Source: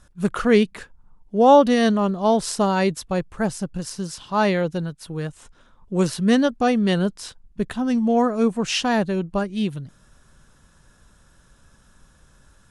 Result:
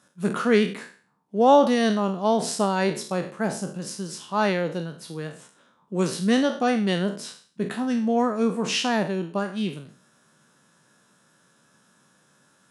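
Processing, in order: spectral sustain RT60 0.44 s; high-pass 160 Hz 24 dB/octave; trim -3.5 dB

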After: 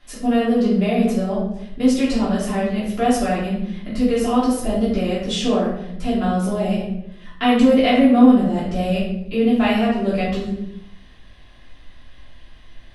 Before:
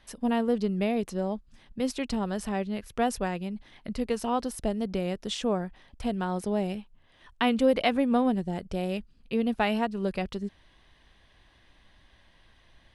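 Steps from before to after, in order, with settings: band-stop 920 Hz, Q 13; in parallel at -2 dB: peak limiter -20.5 dBFS, peak gain reduction 9.5 dB; on the sum: simulated room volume 180 m³, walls mixed, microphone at 3.1 m; trim -5.5 dB

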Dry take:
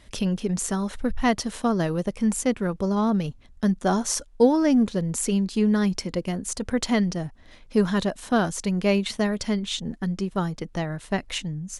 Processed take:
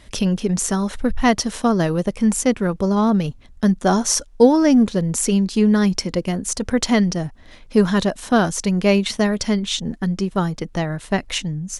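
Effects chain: dynamic bell 5.7 kHz, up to +4 dB, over -50 dBFS, Q 4.6; trim +5.5 dB

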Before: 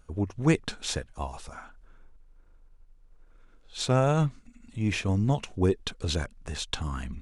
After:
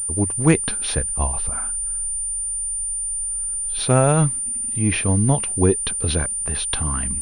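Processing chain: 0.97–3.79 s: bass shelf 120 Hz +9 dB; class-D stage that switches slowly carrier 9.2 kHz; trim +7 dB

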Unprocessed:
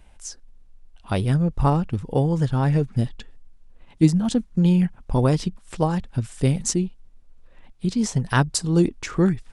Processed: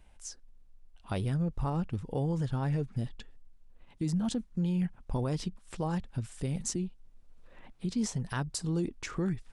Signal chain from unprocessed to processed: peak limiter -16 dBFS, peak gain reduction 11.5 dB; 6.75–7.92 s: three bands compressed up and down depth 40%; trim -7.5 dB

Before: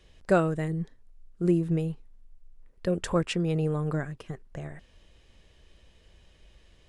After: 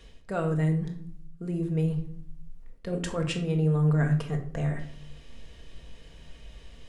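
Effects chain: reverse; compression 16:1, threshold -33 dBFS, peak gain reduction 17.5 dB; reverse; reverberation RT60 0.55 s, pre-delay 4 ms, DRR 3 dB; trim +6 dB

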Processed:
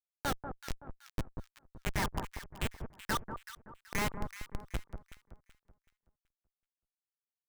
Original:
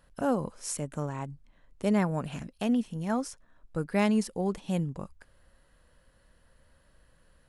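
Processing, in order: companding laws mixed up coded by mu; low-pass 4.4 kHz 12 dB/octave; spectral noise reduction 26 dB; steep high-pass 1 kHz 48 dB/octave; treble shelf 2.8 kHz -7.5 dB; harmonic-percussive split percussive +4 dB; in parallel at -4 dB: word length cut 6-bit, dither none; on the sum: Schmitt trigger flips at -30.5 dBFS; on a send: echo whose repeats swap between lows and highs 189 ms, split 1.3 kHz, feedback 56%, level -7 dB; on the sum: trim +13 dB

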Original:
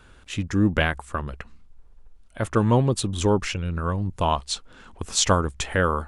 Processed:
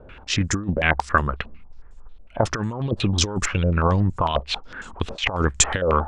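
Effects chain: compressor with a negative ratio -24 dBFS, ratio -0.5; step-sequenced low-pass 11 Hz 580–7500 Hz; trim +3.5 dB

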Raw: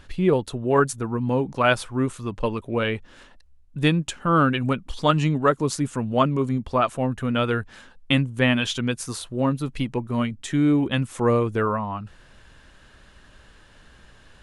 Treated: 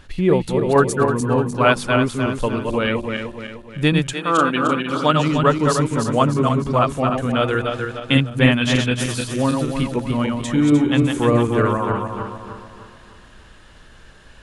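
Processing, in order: backward echo that repeats 151 ms, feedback 66%, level -4 dB; 4.12–5.31 s: high-pass 400 Hz -> 140 Hz 12 dB/octave; trim +2.5 dB

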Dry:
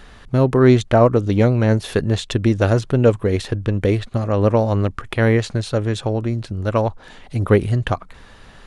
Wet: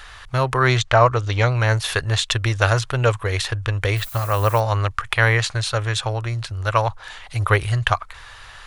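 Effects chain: 0.77–1.55 s: low-pass 7.8 kHz 24 dB/octave; 3.96–4.59 s: added noise violet -44 dBFS; FFT filter 120 Hz 0 dB, 190 Hz -20 dB, 1.1 kHz +8 dB; trim -1 dB

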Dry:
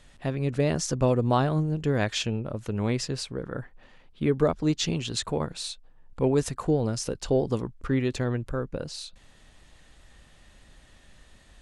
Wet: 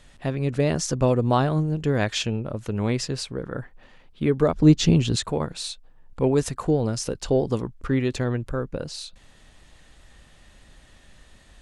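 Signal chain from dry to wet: 4.55–5.16 s: bass shelf 450 Hz +10.5 dB; trim +2.5 dB

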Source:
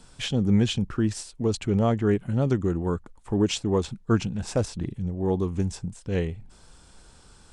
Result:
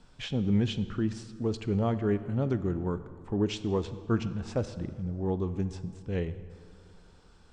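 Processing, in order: distance through air 110 m; plate-style reverb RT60 2.5 s, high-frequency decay 0.6×, DRR 12 dB; trim -5 dB

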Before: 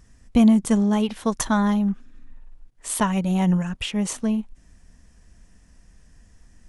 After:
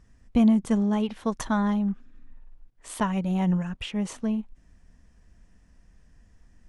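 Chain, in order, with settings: low-pass 3.3 kHz 6 dB/octave; trim -4 dB

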